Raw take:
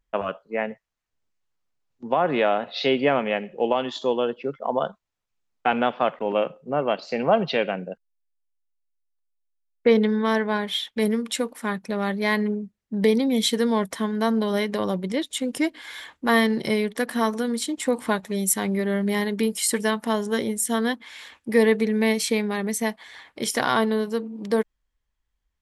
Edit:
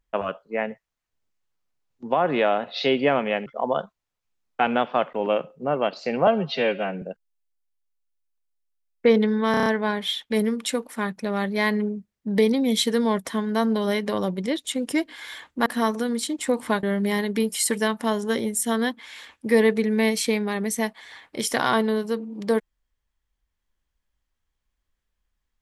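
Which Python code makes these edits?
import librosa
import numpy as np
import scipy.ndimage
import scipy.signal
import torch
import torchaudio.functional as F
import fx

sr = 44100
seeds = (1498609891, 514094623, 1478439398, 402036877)

y = fx.edit(x, sr, fx.cut(start_s=3.46, length_s=1.06),
    fx.stretch_span(start_s=7.33, length_s=0.5, factor=1.5),
    fx.stutter(start_s=10.32, slice_s=0.03, count=6),
    fx.cut(start_s=16.32, length_s=0.73),
    fx.cut(start_s=18.22, length_s=0.64), tone=tone)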